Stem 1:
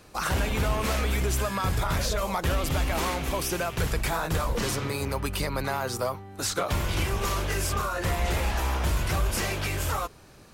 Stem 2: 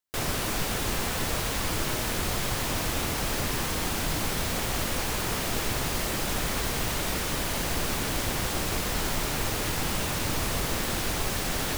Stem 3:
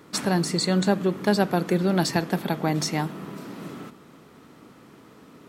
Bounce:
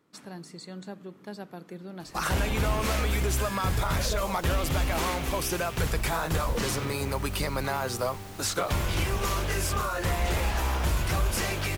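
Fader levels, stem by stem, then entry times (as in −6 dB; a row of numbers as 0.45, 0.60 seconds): −0.5, −17.0, −19.0 decibels; 2.00, 2.50, 0.00 seconds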